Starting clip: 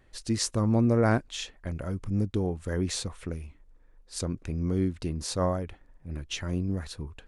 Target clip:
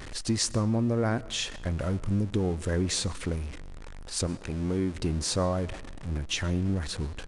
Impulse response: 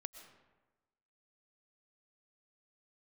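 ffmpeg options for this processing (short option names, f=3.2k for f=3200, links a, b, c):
-filter_complex "[0:a]aeval=exprs='val(0)+0.5*0.0119*sgn(val(0))':c=same,asettb=1/sr,asplit=3[a][b][c];[a]atrim=end=4.274[d];[b]atrim=start=4.27:end=4.95,asetpts=PTS-STARTPTS,afade=t=in:d=0.004:c=qsin,afade=t=out:st=0.676:d=0.004:c=qsin,lowshelf=f=200:g=-8[e];[c]atrim=start=4.946[f];[d][e]acrossfade=d=0.004:c1=hsin:c2=qsin[g];[g][f]acrossfade=d=0.004:c1=qsin:c2=hsin,acompressor=threshold=-25dB:ratio=6,asplit=2[h][i];[1:a]atrim=start_sample=2205[j];[i][j]afir=irnorm=-1:irlink=0,volume=-4.5dB[k];[h][k]amix=inputs=2:normalize=0,aresample=22050,aresample=44100"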